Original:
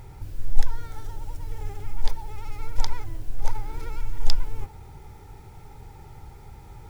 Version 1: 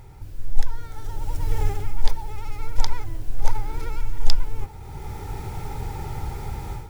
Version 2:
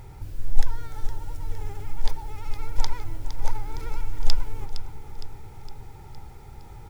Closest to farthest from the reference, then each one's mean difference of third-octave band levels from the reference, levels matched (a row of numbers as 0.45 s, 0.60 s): 2, 1; 1.0 dB, 4.0 dB